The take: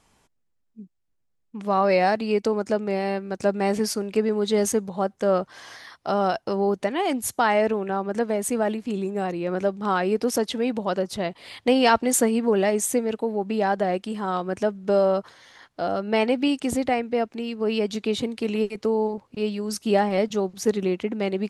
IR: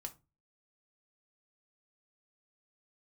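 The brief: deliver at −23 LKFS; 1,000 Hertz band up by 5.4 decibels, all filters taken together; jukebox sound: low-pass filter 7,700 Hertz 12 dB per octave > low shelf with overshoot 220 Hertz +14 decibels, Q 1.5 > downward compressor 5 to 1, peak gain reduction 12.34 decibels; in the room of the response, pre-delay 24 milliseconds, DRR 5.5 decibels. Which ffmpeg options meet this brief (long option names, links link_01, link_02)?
-filter_complex "[0:a]equalizer=frequency=1000:width_type=o:gain=8.5,asplit=2[link_01][link_02];[1:a]atrim=start_sample=2205,adelay=24[link_03];[link_02][link_03]afir=irnorm=-1:irlink=0,volume=-2dB[link_04];[link_01][link_04]amix=inputs=2:normalize=0,lowpass=7700,lowshelf=frequency=220:width_type=q:width=1.5:gain=14,acompressor=threshold=-19dB:ratio=5,volume=0.5dB"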